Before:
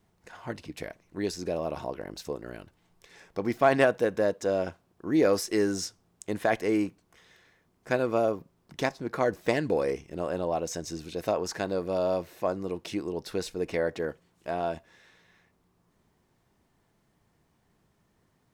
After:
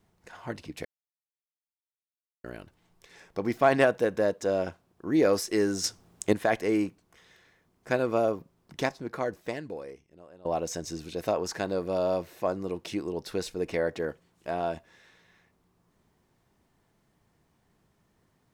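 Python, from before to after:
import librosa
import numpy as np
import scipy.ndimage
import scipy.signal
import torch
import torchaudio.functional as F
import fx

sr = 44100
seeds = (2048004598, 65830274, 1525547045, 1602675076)

y = fx.edit(x, sr, fx.silence(start_s=0.85, length_s=1.59),
    fx.clip_gain(start_s=5.84, length_s=0.49, db=8.5),
    fx.fade_out_to(start_s=8.82, length_s=1.63, curve='qua', floor_db=-21.5), tone=tone)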